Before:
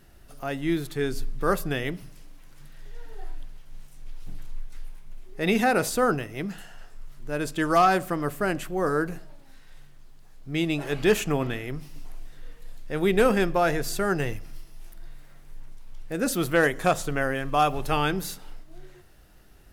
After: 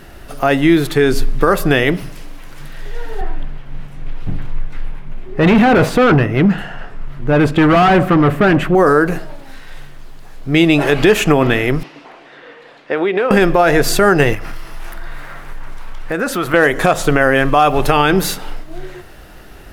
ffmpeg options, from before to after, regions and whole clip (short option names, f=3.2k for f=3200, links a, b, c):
-filter_complex "[0:a]asettb=1/sr,asplit=3[a][b][c];[a]atrim=end=3.214[d];[b]atrim=start=3.21:end=8.75,asetpts=PTS-STARTPTS,afade=t=in:d=0.004:c=qsin,afade=t=out:st=5.536:d=0.004:c=qsin,highpass=f=51:p=1,asoftclip=type=hard:threshold=-28.5dB,bass=f=250:g=9,treble=f=4k:g=-14[e];[c]atrim=start=8.746[f];[d][e]acrossfade=d=0.004:c1=hsin:c2=qsin[g];[g][f]acrossfade=d=0.004:c1=qsin:c2=hsin,asettb=1/sr,asplit=3[h][i][j];[h]atrim=end=11.834[k];[i]atrim=start=11.83:end=13.31,asetpts=PTS-STARTPTS,afade=t=in:d=0.004:c=qsin,afade=t=out:st=1.476:d=0.004:c=qsin,highpass=330,lowpass=3.2k,acompressor=threshold=-31dB:ratio=10:attack=3.2:release=140:knee=1:detection=peak[l];[j]atrim=start=13.306[m];[k][l]acrossfade=d=0.004:c1=hsin:c2=qsin[n];[n][m]acrossfade=d=0.004:c1=qsin:c2=hsin,asettb=1/sr,asplit=3[o][p][q];[o]atrim=end=14.344[r];[p]atrim=start=14.34:end=16.54,asetpts=PTS-STARTPTS,afade=t=in:d=0.004:c=qsin,afade=t=out:st=2.196:d=0.004:c=qsin,equalizer=f=1.3k:t=o:w=1.7:g=9.5,acompressor=threshold=-36dB:ratio=4:attack=3.2:release=140:knee=1:detection=peak[s];[q]atrim=start=16.536[t];[r][s]acrossfade=d=0.004:c1=hsin:c2=qsin[u];[u][t]acrossfade=d=0.004:c1=qsin:c2=hsin,bass=f=250:g=-5,treble=f=4k:g=-7,acompressor=threshold=-26dB:ratio=3,alimiter=level_in=21dB:limit=-1dB:release=50:level=0:latency=1,volume=-1dB"